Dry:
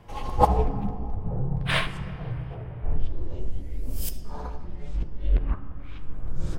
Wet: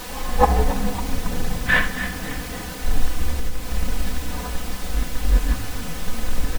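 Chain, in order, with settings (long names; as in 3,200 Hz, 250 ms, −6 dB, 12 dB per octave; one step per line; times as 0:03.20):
Bessel low-pass filter 2,800 Hz
in parallel at −6 dB: comparator with hysteresis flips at −21.5 dBFS
on the sum: parametric band 1,700 Hz +14 dB 0.27 octaves
on a send: echo with shifted repeats 275 ms, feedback 47%, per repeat +60 Hz, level −12 dB
on the sum: background noise pink −35 dBFS
0:03.30–0:03.74: downward compressor, threshold −20 dBFS, peak gain reduction 5.5 dB
comb filter 4 ms, depth 76%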